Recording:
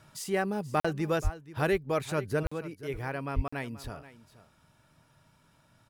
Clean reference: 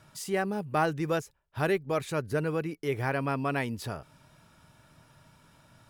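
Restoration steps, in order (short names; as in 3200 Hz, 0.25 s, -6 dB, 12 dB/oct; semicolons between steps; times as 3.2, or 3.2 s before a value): de-plosive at 1.23/2.44/3.35; interpolate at 0.8/2.47/3.48, 45 ms; inverse comb 0.48 s -16.5 dB; gain correction +5.5 dB, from 2.43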